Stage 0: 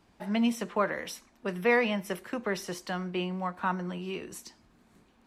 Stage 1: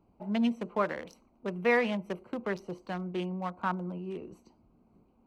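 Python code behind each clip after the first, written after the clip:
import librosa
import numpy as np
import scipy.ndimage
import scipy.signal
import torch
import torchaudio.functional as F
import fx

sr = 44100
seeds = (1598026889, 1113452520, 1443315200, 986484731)

y = fx.wiener(x, sr, points=25)
y = y * 10.0 ** (-1.0 / 20.0)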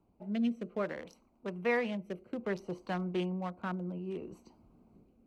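y = fx.rider(x, sr, range_db=4, speed_s=2.0)
y = fx.rotary(y, sr, hz=0.6)
y = y * 10.0 ** (-1.5 / 20.0)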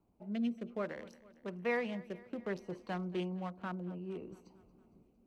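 y = fx.echo_feedback(x, sr, ms=229, feedback_pct=59, wet_db=-20.0)
y = y * 10.0 ** (-3.5 / 20.0)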